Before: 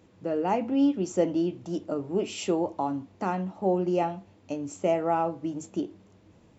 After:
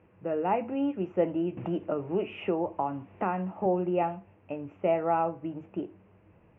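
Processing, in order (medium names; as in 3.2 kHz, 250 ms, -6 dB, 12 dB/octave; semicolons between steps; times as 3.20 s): elliptic low-pass 2.7 kHz, stop band 40 dB; peaking EQ 260 Hz -7 dB 0.52 oct; 1.57–3.66 s: three bands compressed up and down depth 70%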